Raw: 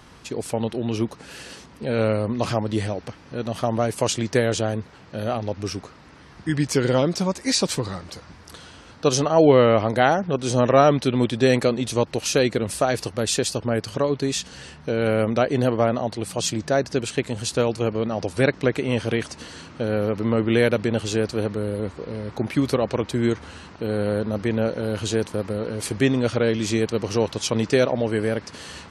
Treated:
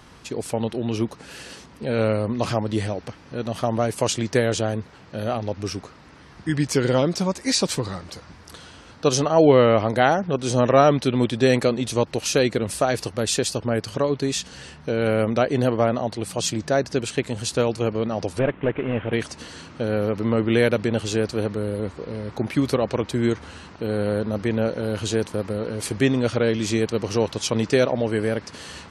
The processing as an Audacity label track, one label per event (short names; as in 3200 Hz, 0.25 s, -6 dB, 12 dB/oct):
18.390000	19.130000	CVSD 16 kbps